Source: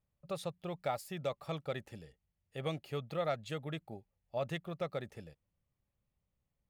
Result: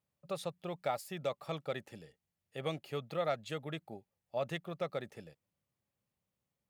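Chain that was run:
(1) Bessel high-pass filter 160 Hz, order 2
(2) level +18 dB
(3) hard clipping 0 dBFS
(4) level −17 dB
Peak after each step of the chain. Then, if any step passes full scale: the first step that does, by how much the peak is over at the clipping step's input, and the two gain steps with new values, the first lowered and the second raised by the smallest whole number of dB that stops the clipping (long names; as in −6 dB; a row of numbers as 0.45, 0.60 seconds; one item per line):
−22.0, −4.0, −4.0, −21.0 dBFS
no step passes full scale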